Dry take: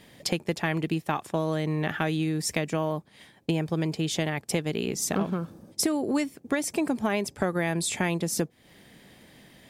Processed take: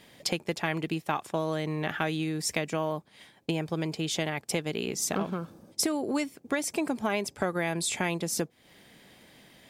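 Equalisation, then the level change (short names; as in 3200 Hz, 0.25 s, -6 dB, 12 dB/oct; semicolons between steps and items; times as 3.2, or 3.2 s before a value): low shelf 350 Hz -6 dB; bell 11000 Hz -2 dB; notch 1800 Hz, Q 21; 0.0 dB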